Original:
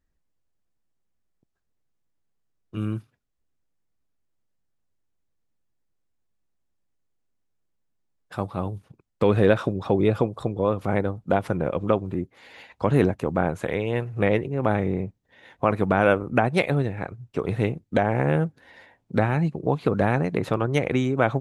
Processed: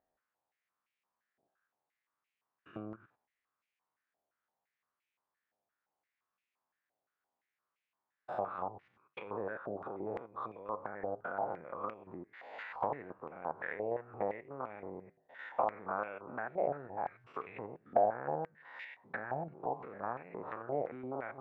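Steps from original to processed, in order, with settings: spectrogram pixelated in time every 100 ms; low-pass that closes with the level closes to 900 Hz, closed at -22.5 dBFS; compression 2:1, threshold -41 dBFS, peak gain reduction 14 dB; flange 0.61 Hz, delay 7.6 ms, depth 3 ms, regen -84%; step-sequenced band-pass 5.8 Hz 700–2400 Hz; trim +18 dB

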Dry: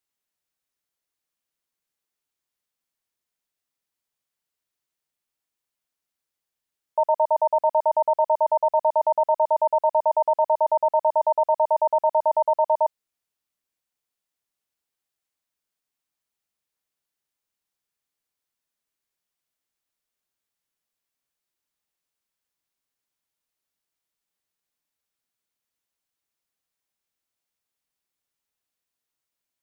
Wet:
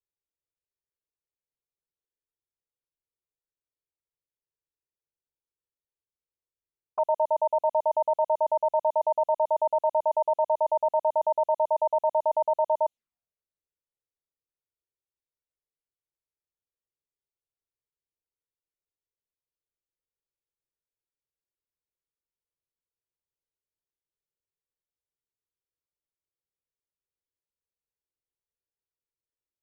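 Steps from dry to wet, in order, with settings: touch-sensitive flanger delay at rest 2.1 ms, full sweep at -21.5 dBFS; level-controlled noise filter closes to 470 Hz, open at -21.5 dBFS; trim -1.5 dB

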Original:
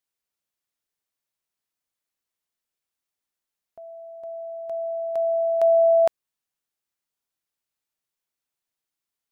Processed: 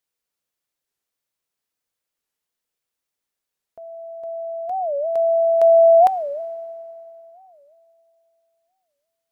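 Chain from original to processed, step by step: peaking EQ 480 Hz +5.5 dB 0.26 oct; FDN reverb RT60 3.1 s, high-frequency decay 0.85×, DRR 14 dB; warped record 45 rpm, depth 250 cents; trim +2.5 dB

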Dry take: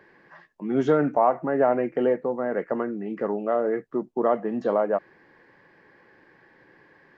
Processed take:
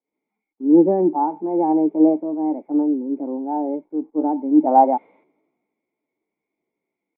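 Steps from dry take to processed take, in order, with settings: zero-crossing glitches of -25.5 dBFS; gate -37 dBFS, range -10 dB; harmonic-percussive split harmonic +8 dB; bass shelf 120 Hz -5 dB; time-frequency box 4.67–5.25 s, 370–3300 Hz +9 dB; pitch shift +4 st; cascade formant filter u; three bands expanded up and down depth 70%; trim +8 dB

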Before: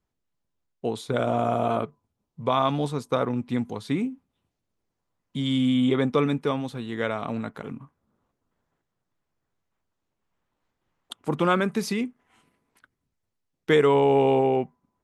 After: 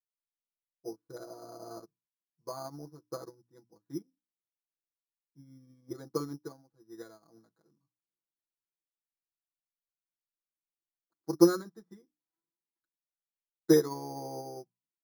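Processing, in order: steep low-pass 1.8 kHz 48 dB/octave; peaking EQ 340 Hz +11 dB 0.41 oct; hum notches 60/120/180/240/300 Hz; comb 6.1 ms, depth 98%; 3.91–5.97 s: dynamic bell 780 Hz, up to -5 dB, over -34 dBFS, Q 0.83; careless resampling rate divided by 8×, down filtered, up hold; upward expansion 2.5:1, over -30 dBFS; trim -6.5 dB

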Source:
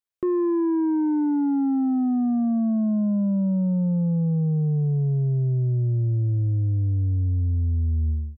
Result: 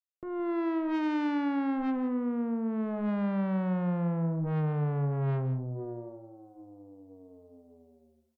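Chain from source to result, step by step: fade-in on the opening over 1.28 s; peaking EQ 1.6 kHz -3.5 dB 2.2 oct; comb 6.6 ms, depth 56%; de-hum 53.38 Hz, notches 9; in parallel at -3 dB: peak limiter -23 dBFS, peak gain reduction 9.5 dB; on the sum: bass shelf 200 Hz -9 dB; high-pass sweep 89 Hz -> 710 Hz, 5.09–6.23 s; valve stage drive 31 dB, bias 0.8; on a send: delay 167 ms -13 dB; on the sum: trim +2.5 dB

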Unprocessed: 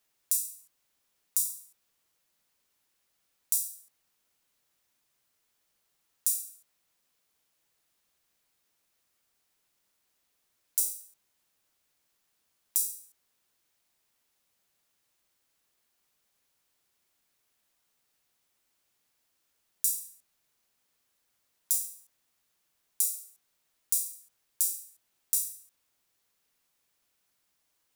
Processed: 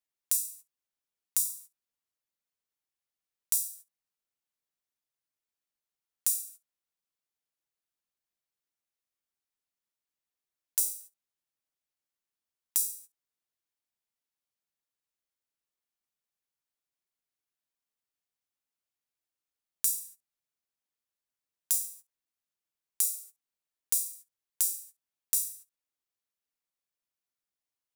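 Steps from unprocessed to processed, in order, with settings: gate -49 dBFS, range -17 dB

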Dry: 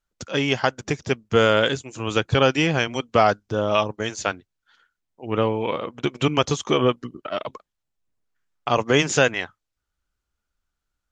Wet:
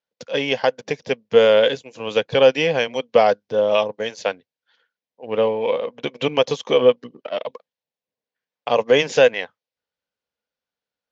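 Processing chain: in parallel at -9.5 dB: crossover distortion -33.5 dBFS; on the sum: cabinet simulation 230–5300 Hz, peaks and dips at 340 Hz -10 dB, 500 Hz +10 dB, 1.3 kHz -10 dB; trim -1 dB

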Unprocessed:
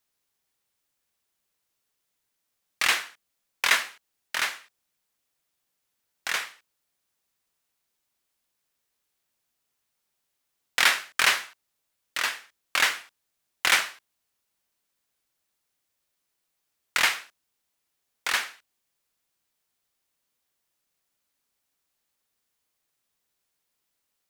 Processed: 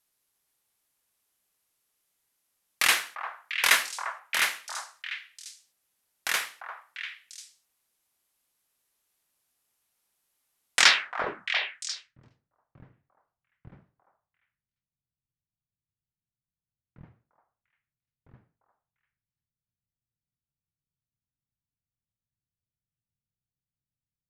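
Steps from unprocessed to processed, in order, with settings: low-pass sweep 12 kHz -> 130 Hz, 10.74–11.48 s; repeats whose band climbs or falls 347 ms, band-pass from 930 Hz, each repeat 1.4 oct, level -3.5 dB

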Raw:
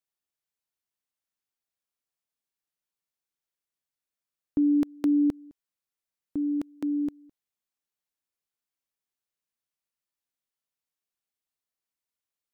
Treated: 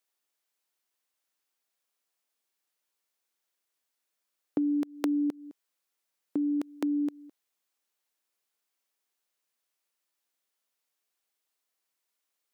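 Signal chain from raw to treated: high-pass 300 Hz 12 dB/octave; compression 6:1, threshold -34 dBFS, peak gain reduction 9.5 dB; trim +7.5 dB

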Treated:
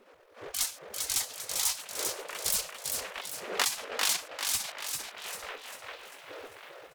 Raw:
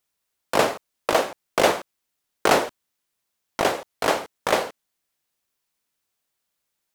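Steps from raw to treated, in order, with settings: self-modulated delay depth 0.099 ms; wind noise 270 Hz -32 dBFS; peaking EQ 820 Hz -14 dB 1.5 oct; pitch shift -1.5 st; hum notches 60/120 Hz; on a send: feedback echo behind a band-pass 697 ms, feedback 42%, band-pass 1.5 kHz, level -17 dB; on the sum: level rider gain up to 15 dB; spectral gate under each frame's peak -20 dB weak; transient shaper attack -2 dB, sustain -7 dB; frequency-shifting echo 396 ms, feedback 46%, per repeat +47 Hz, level -4.5 dB

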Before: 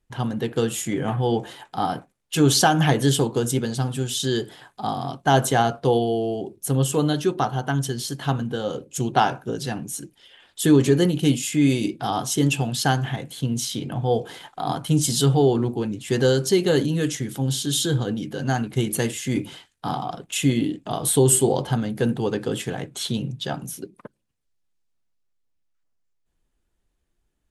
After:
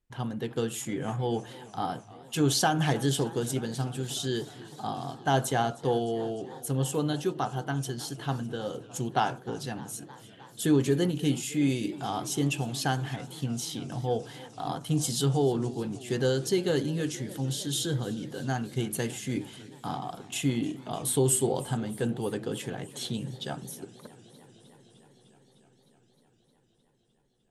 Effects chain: modulated delay 306 ms, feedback 79%, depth 114 cents, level -20 dB; trim -7.5 dB

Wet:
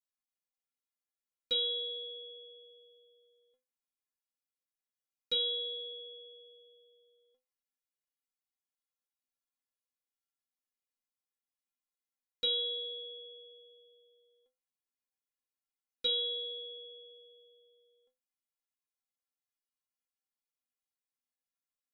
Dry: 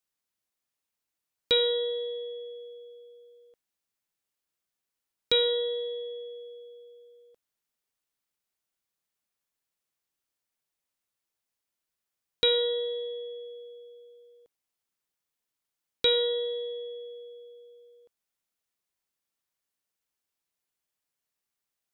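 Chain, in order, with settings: inharmonic resonator 250 Hz, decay 0.25 s, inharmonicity 0.008

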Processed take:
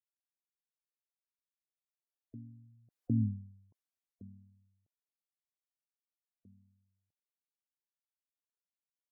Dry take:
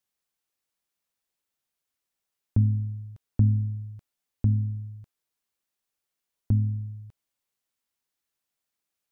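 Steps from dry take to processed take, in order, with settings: Doppler pass-by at 3.24 s, 30 m/s, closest 2 m; high-pass 240 Hz 12 dB/octave; spectral gate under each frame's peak -20 dB strong; trim +6 dB

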